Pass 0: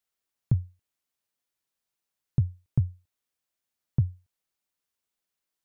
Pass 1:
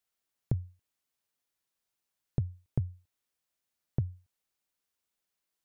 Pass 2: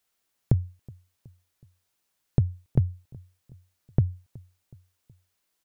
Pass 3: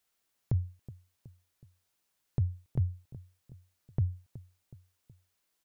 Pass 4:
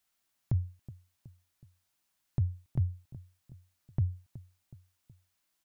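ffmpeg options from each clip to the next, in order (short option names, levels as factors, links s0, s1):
-af "acompressor=threshold=0.0501:ratio=6"
-filter_complex "[0:a]asplit=2[s0][s1];[s1]adelay=371,lowpass=f=1000:p=1,volume=0.0668,asplit=2[s2][s3];[s3]adelay=371,lowpass=f=1000:p=1,volume=0.53,asplit=2[s4][s5];[s5]adelay=371,lowpass=f=1000:p=1,volume=0.53[s6];[s0][s2][s4][s6]amix=inputs=4:normalize=0,volume=2.66"
-af "alimiter=limit=0.15:level=0:latency=1:release=44,volume=0.794"
-af "equalizer=f=460:t=o:w=0.33:g=-10.5"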